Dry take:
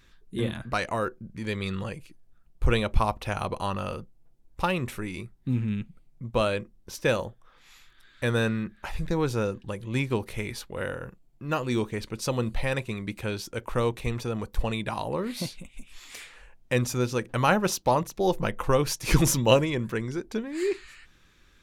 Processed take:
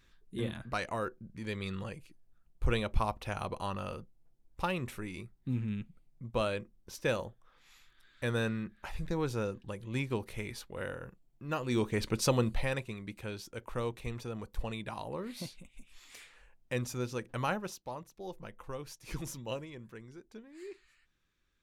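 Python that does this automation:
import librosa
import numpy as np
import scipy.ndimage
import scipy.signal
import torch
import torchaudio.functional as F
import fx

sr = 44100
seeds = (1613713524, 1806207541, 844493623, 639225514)

y = fx.gain(x, sr, db=fx.line((11.59, -7.0), (12.12, 3.0), (12.97, -9.5), (17.43, -9.5), (17.84, -19.0)))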